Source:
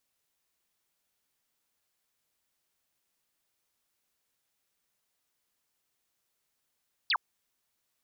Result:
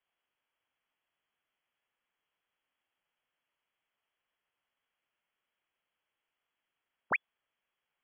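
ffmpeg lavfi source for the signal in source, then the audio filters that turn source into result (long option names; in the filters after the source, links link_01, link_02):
-f lavfi -i "aevalsrc='0.0631*clip(t/0.002,0,1)*clip((0.06-t)/0.002,0,1)*sin(2*PI*5200*0.06/log(820/5200)*(exp(log(820/5200)*t/0.06)-1))':duration=0.06:sample_rate=44100"
-af "lowpass=frequency=2900:width_type=q:width=0.5098,lowpass=frequency=2900:width_type=q:width=0.6013,lowpass=frequency=2900:width_type=q:width=0.9,lowpass=frequency=2900:width_type=q:width=2.563,afreqshift=-3400"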